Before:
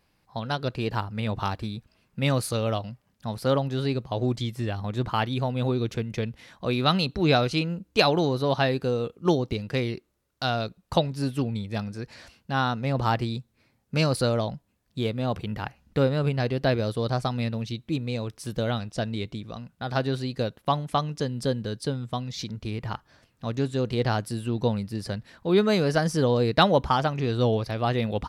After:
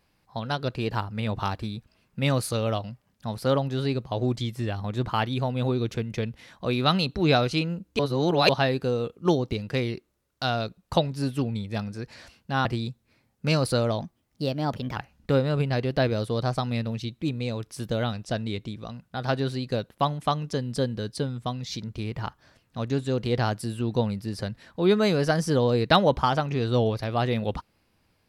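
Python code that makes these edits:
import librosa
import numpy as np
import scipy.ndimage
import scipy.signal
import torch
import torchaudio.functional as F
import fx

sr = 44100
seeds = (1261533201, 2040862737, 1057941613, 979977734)

y = fx.edit(x, sr, fx.reverse_span(start_s=7.99, length_s=0.5),
    fx.cut(start_s=12.65, length_s=0.49),
    fx.speed_span(start_s=14.5, length_s=1.13, speed=1.19), tone=tone)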